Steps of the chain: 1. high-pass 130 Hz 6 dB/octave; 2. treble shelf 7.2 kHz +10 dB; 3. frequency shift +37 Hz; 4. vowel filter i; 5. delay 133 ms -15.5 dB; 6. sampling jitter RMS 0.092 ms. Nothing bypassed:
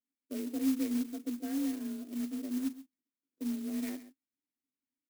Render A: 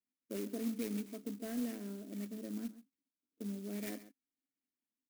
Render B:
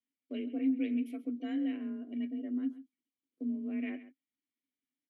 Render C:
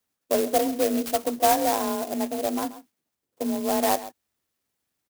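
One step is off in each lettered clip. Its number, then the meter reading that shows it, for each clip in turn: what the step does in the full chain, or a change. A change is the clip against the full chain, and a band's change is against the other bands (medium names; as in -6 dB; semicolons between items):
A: 3, 500 Hz band +6.0 dB; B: 6, 2 kHz band +2.0 dB; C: 4, 1 kHz band +14.5 dB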